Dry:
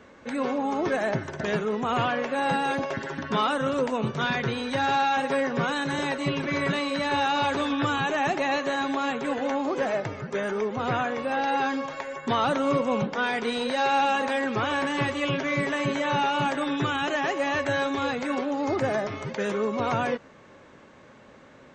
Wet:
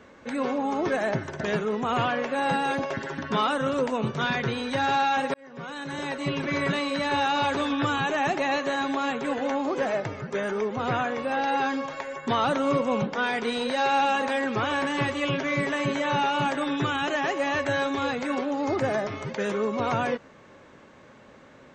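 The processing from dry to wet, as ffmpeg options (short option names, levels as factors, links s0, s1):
-filter_complex "[0:a]asplit=2[s0][s1];[s0]atrim=end=5.34,asetpts=PTS-STARTPTS,afade=t=out:st=5.336:d=0.004:c=hsin[s2];[s1]atrim=start=5.34,asetpts=PTS-STARTPTS,afade=t=in:d=1.11[s3];[s2][s3]concat=n=2:v=0:a=1"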